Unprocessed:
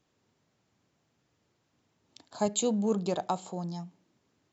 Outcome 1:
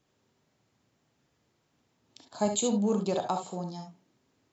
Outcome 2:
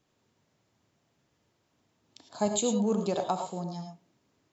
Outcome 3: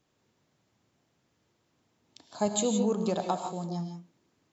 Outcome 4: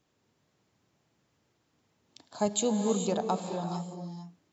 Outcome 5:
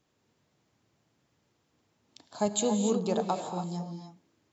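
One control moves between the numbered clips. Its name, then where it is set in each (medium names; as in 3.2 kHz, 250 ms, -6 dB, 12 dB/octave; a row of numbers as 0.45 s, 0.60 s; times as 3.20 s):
gated-style reverb, gate: 90 ms, 130 ms, 190 ms, 480 ms, 320 ms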